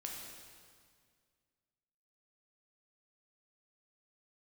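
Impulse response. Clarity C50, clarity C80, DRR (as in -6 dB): 1.5 dB, 3.0 dB, -1.5 dB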